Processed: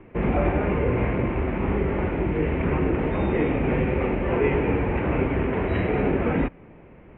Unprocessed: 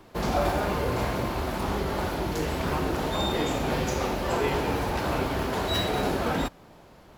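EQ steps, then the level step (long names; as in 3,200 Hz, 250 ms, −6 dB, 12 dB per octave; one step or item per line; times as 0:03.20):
Butterworth low-pass 2,500 Hz 48 dB per octave
flat-topped bell 1,000 Hz −8 dB
+6.0 dB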